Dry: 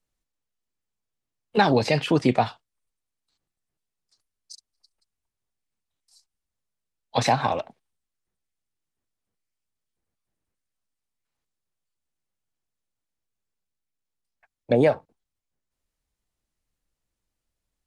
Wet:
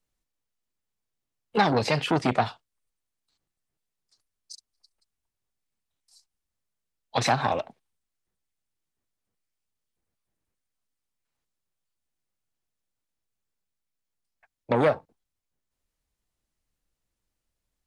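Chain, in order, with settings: core saturation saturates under 1000 Hz

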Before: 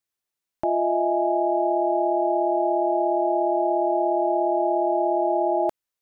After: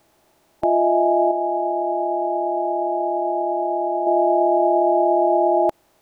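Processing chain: per-bin compression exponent 0.6; limiter -16.5 dBFS, peak gain reduction 4 dB; 1.31–4.07 resonator 64 Hz, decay 1.5 s, harmonics all, mix 50%; gain +7.5 dB

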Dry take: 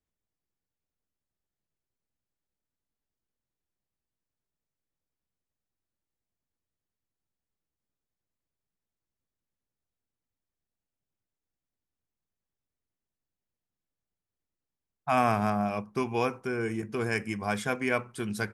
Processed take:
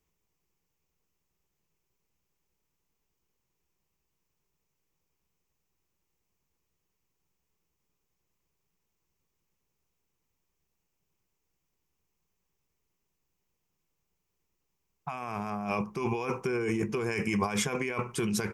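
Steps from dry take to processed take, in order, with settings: negative-ratio compressor -35 dBFS, ratio -1; ripple EQ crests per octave 0.76, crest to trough 7 dB; gain +3.5 dB

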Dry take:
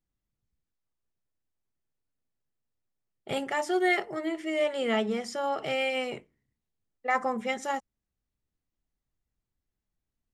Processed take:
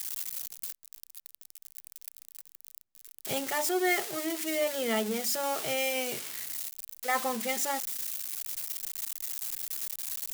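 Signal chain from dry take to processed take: switching spikes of -21 dBFS; gain -2.5 dB

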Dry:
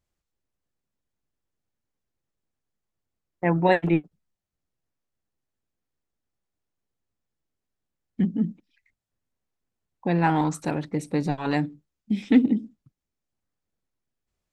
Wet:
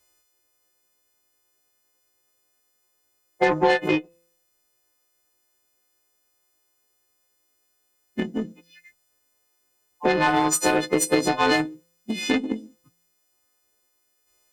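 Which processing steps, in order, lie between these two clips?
frequency quantiser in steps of 3 st; compressor 12:1, threshold -29 dBFS, peak gain reduction 17.5 dB; resonant low shelf 260 Hz -9.5 dB, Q 1.5; resonator 170 Hz, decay 0.72 s, harmonics all, mix 70%; added harmonics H 7 -22 dB, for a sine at -28.5 dBFS; maximiser +35 dB; gain -7.5 dB

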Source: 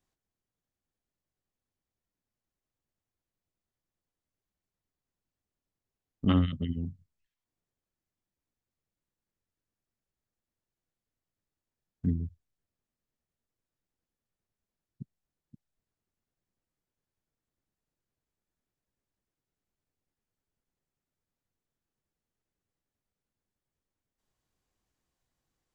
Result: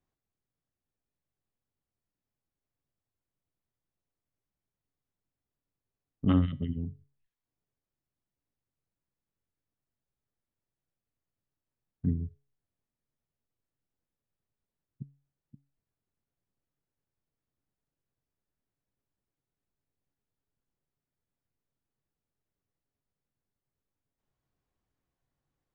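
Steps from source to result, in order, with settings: LPF 1800 Hz 6 dB/oct; bell 120 Hz +3 dB 0.68 oct; resonator 140 Hz, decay 0.38 s, harmonics all, mix 50%; gain +4 dB

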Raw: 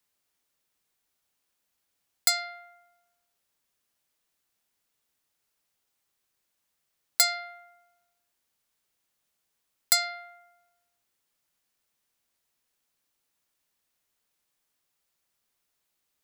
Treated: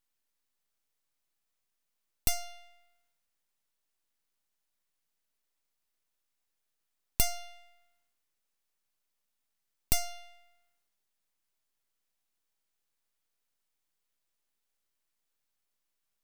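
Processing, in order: full-wave rectifier; gain -3 dB

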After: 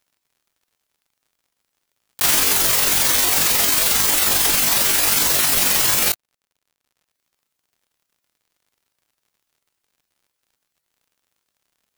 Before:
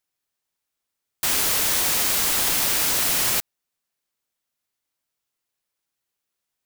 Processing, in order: reverb removal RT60 0.52 s; granular stretch 1.8×, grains 90 ms; crackle 74/s -58 dBFS; gain +7 dB

